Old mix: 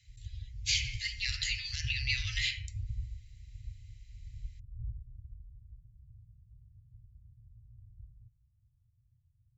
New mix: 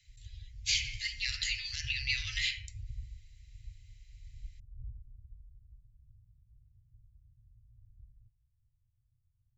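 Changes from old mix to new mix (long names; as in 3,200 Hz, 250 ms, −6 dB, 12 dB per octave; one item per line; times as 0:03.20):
background −8.5 dB
master: remove high-pass filter 67 Hz 6 dB per octave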